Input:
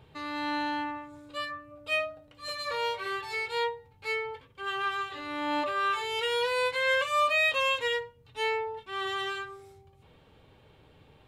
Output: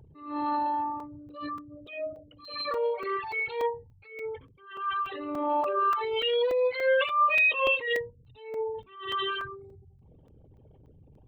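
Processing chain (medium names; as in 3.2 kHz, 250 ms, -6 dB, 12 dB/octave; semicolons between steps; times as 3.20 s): resonances exaggerated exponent 3; crackling interface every 0.29 s, samples 128, zero, from 1.00 s; attacks held to a fixed rise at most 100 dB/s; trim +3 dB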